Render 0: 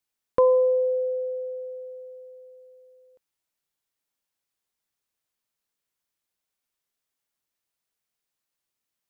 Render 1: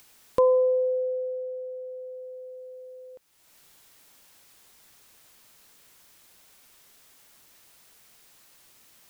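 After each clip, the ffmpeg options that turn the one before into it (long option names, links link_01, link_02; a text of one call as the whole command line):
ffmpeg -i in.wav -af "acompressor=mode=upward:threshold=-32dB:ratio=2.5,volume=-1.5dB" out.wav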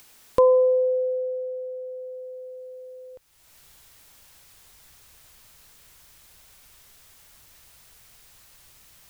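ffmpeg -i in.wav -af "asubboost=boost=5:cutoff=110,volume=3.5dB" out.wav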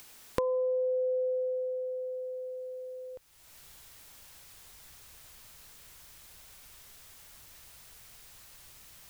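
ffmpeg -i in.wav -af "acompressor=threshold=-27dB:ratio=16" out.wav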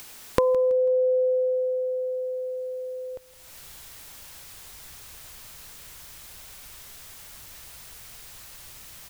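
ffmpeg -i in.wav -af "aecho=1:1:164|328|492:0.119|0.0475|0.019,volume=8.5dB" out.wav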